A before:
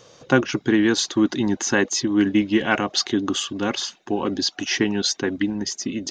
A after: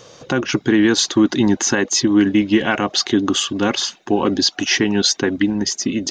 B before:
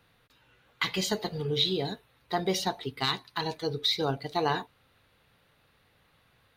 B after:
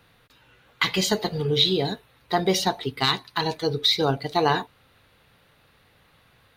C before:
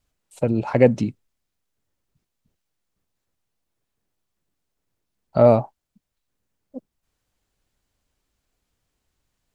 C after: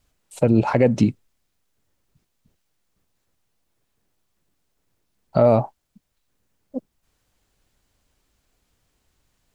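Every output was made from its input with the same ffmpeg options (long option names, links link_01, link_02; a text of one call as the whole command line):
ffmpeg -i in.wav -af "alimiter=limit=-11.5dB:level=0:latency=1:release=161,volume=6.5dB" out.wav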